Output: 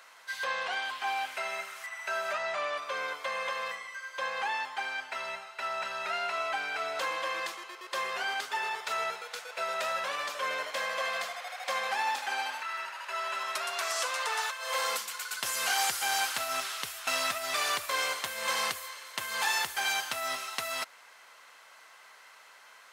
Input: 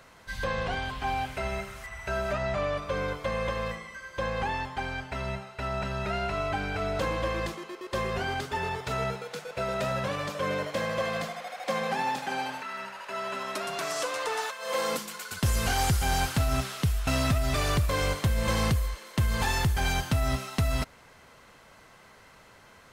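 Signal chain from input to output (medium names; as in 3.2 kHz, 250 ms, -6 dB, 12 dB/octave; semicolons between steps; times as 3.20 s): high-pass 920 Hz 12 dB/octave; trim +2 dB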